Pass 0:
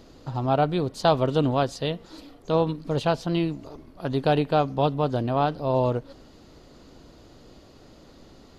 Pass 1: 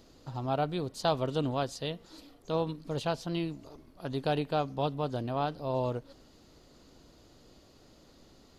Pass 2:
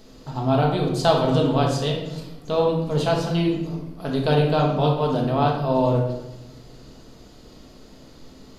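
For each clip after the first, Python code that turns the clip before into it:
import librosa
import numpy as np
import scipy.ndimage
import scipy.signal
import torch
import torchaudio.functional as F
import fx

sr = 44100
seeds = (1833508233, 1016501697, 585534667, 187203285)

y1 = fx.high_shelf(x, sr, hz=4300.0, db=7.5)
y1 = y1 * 10.0 ** (-8.5 / 20.0)
y2 = fx.room_shoebox(y1, sr, seeds[0], volume_m3=380.0, walls='mixed', distance_m=1.5)
y2 = y2 * 10.0 ** (6.5 / 20.0)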